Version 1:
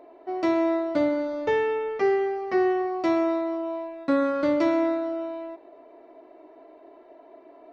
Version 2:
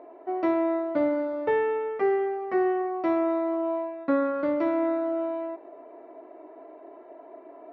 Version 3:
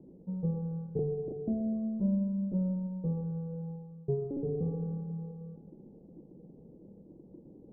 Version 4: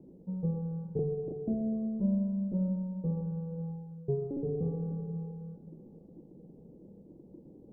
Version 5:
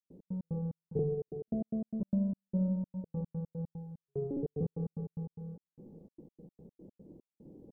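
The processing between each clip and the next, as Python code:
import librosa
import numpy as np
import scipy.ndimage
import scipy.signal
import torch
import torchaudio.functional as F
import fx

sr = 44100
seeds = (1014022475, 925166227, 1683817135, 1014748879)

y1 = scipy.signal.sosfilt(scipy.signal.butter(2, 1900.0, 'lowpass', fs=sr, output='sos'), x)
y1 = fx.low_shelf(y1, sr, hz=120.0, db=-11.5)
y1 = fx.rider(y1, sr, range_db=4, speed_s=0.5)
y2 = fx.cycle_switch(y1, sr, every=2, mode='inverted')
y2 = scipy.signal.sosfilt(scipy.signal.cheby2(4, 80, 2100.0, 'lowpass', fs=sr, output='sos'), y2)
y2 = fx.rev_schroeder(y2, sr, rt60_s=1.9, comb_ms=31, drr_db=7.5)
y3 = y2 + 10.0 ** (-15.5 / 20.0) * np.pad(y2, (int(545 * sr / 1000.0), 0))[:len(y2)]
y4 = fx.step_gate(y3, sr, bpm=148, pattern='.x.x.xx..xxx.x.x', floor_db=-60.0, edge_ms=4.5)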